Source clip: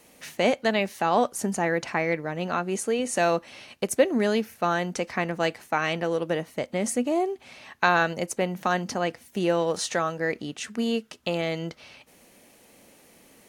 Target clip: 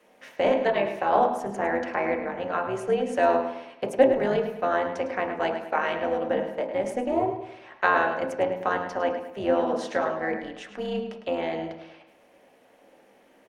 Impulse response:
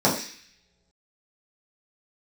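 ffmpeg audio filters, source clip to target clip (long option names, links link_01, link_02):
-filter_complex "[0:a]acrossover=split=350 3300:gain=0.0891 1 0.2[link_01][link_02][link_03];[link_01][link_02][link_03]amix=inputs=3:normalize=0,tremolo=f=260:d=0.71,asplit=2[link_04][link_05];[link_05]adelay=105,lowpass=frequency=4900:poles=1,volume=-9dB,asplit=2[link_06][link_07];[link_07]adelay=105,lowpass=frequency=4900:poles=1,volume=0.42,asplit=2[link_08][link_09];[link_09]adelay=105,lowpass=frequency=4900:poles=1,volume=0.42,asplit=2[link_10][link_11];[link_11]adelay=105,lowpass=frequency=4900:poles=1,volume=0.42,asplit=2[link_12][link_13];[link_13]adelay=105,lowpass=frequency=4900:poles=1,volume=0.42[link_14];[link_04][link_06][link_08][link_10][link_12][link_14]amix=inputs=6:normalize=0,asplit=2[link_15][link_16];[1:a]atrim=start_sample=2205,lowpass=3600[link_17];[link_16][link_17]afir=irnorm=-1:irlink=0,volume=-19dB[link_18];[link_15][link_18]amix=inputs=2:normalize=0"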